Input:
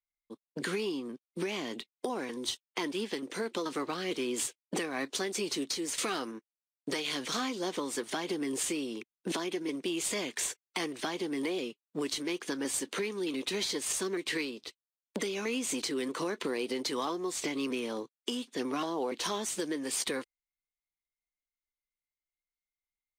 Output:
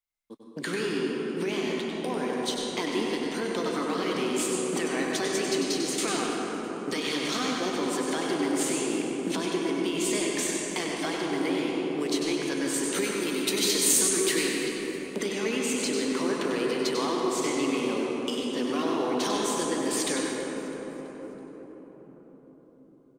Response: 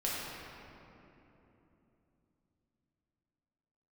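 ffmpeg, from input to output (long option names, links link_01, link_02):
-filter_complex "[0:a]asettb=1/sr,asplit=3[link_01][link_02][link_03];[link_01]atrim=end=12.944[link_04];[link_02]atrim=start=12.94:end=14.6,asetpts=PTS-STARTPTS,afade=type=in:duration=0.004:curve=qsin,afade=type=out:start_time=1.656:duration=0.004:curve=qsin,aemphasis=mode=production:type=50fm[link_05];[link_03]atrim=start=14.596[link_06];[link_04][link_05]acrossfade=duration=0.004:curve1=hsin:curve2=qsin[link_07];[link_07][link_06]acrossfade=duration=0.004:curve1=qsin:curve2=hsin,asplit=5[link_08][link_09][link_10][link_11][link_12];[link_09]adelay=328,afreqshift=62,volume=-18.5dB[link_13];[link_10]adelay=656,afreqshift=124,volume=-25.2dB[link_14];[link_11]adelay=984,afreqshift=186,volume=-32dB[link_15];[link_12]adelay=1312,afreqshift=248,volume=-38.7dB[link_16];[link_08][link_13][link_14][link_15][link_16]amix=inputs=5:normalize=0,asplit=2[link_17][link_18];[1:a]atrim=start_sample=2205,asetrate=23373,aresample=44100,adelay=96[link_19];[link_18][link_19]afir=irnorm=-1:irlink=0,volume=-8dB[link_20];[link_17][link_20]amix=inputs=2:normalize=0,volume=1.5dB"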